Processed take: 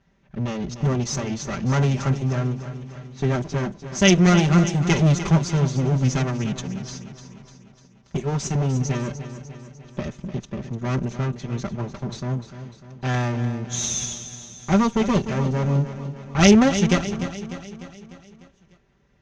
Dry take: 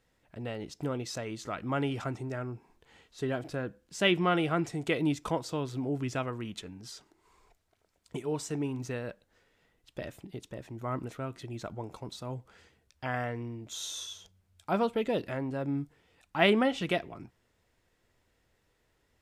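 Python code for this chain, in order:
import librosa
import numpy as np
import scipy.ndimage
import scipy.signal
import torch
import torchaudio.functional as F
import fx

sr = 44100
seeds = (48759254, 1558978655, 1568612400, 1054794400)

p1 = fx.lower_of_two(x, sr, delay_ms=5.1)
p2 = fx.lowpass_res(p1, sr, hz=6300.0, q=8.3)
p3 = fx.env_lowpass(p2, sr, base_hz=2900.0, full_db=-27.0)
p4 = fx.highpass(p3, sr, hz=85.0, slope=6)
p5 = fx.bass_treble(p4, sr, bass_db=13, treble_db=-5)
p6 = p5 + fx.echo_feedback(p5, sr, ms=299, feedback_pct=55, wet_db=-11.5, dry=0)
y = p6 * 10.0 ** (7.0 / 20.0)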